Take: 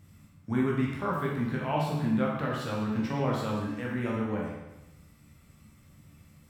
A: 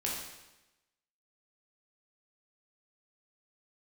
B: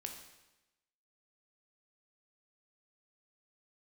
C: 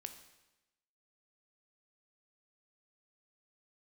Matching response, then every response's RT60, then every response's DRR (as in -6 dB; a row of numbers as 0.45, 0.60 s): A; 1.0, 1.0, 1.0 s; -4.0, 3.0, 7.5 dB